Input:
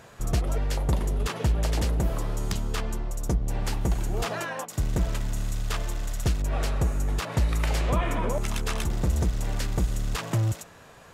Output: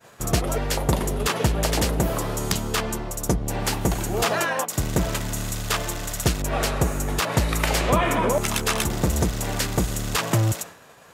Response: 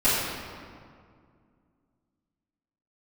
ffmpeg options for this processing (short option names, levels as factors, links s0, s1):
-af "highpass=f=170:p=1,agate=range=0.0224:threshold=0.00631:ratio=3:detection=peak,highshelf=f=11000:g=7.5,volume=2.66"